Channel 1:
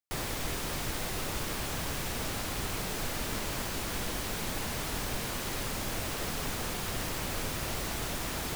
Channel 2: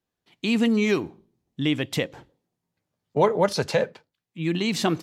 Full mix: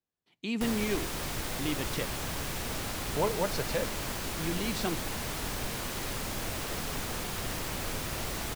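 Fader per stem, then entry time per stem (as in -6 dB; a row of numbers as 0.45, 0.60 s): -0.5, -10.0 dB; 0.50, 0.00 s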